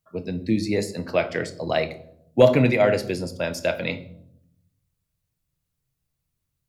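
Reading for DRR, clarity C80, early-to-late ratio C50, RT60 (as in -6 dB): 9.0 dB, 18.5 dB, 15.0 dB, 0.70 s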